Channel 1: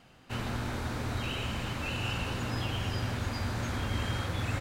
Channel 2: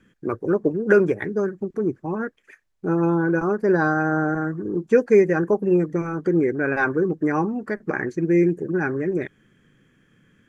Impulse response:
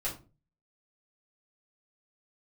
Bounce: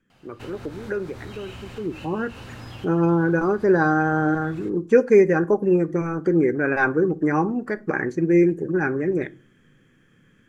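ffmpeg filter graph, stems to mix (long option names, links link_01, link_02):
-filter_complex "[0:a]acompressor=threshold=-40dB:ratio=2,adelay=100,volume=-0.5dB,asplit=2[link_01][link_02];[link_02]volume=-20.5dB[link_03];[1:a]afade=type=in:start_time=1.72:duration=0.42:silence=0.237137,asplit=3[link_04][link_05][link_06];[link_05]volume=-15.5dB[link_07];[link_06]apad=whole_len=207347[link_08];[link_01][link_08]sidechaincompress=threshold=-33dB:ratio=8:attack=7.5:release=120[link_09];[2:a]atrim=start_sample=2205[link_10];[link_03][link_07]amix=inputs=2:normalize=0[link_11];[link_11][link_10]afir=irnorm=-1:irlink=0[link_12];[link_09][link_04][link_12]amix=inputs=3:normalize=0"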